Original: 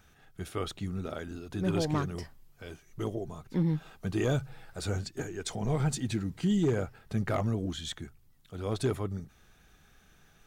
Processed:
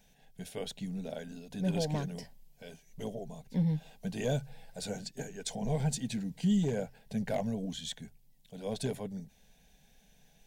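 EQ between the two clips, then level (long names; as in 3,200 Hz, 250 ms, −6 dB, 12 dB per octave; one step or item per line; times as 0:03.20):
dynamic equaliser 1,500 Hz, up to +6 dB, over −58 dBFS, Q 5.1
phaser with its sweep stopped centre 340 Hz, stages 6
0.0 dB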